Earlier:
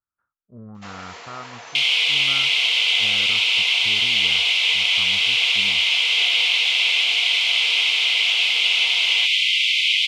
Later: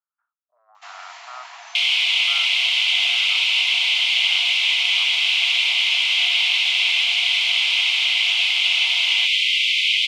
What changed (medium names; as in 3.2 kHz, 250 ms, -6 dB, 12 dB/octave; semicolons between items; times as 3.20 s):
first sound: send off; master: add Chebyshev high-pass 660 Hz, order 6